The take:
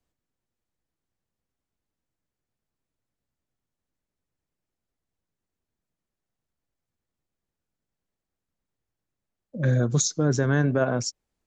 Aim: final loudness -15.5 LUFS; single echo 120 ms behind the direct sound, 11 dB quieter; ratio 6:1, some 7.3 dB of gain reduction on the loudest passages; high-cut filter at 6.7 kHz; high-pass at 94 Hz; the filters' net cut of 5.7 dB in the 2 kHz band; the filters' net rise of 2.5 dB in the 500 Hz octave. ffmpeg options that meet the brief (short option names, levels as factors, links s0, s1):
-af "highpass=94,lowpass=6700,equalizer=f=500:t=o:g=3.5,equalizer=f=2000:t=o:g=-9,acompressor=threshold=0.0562:ratio=6,aecho=1:1:120:0.282,volume=5.31"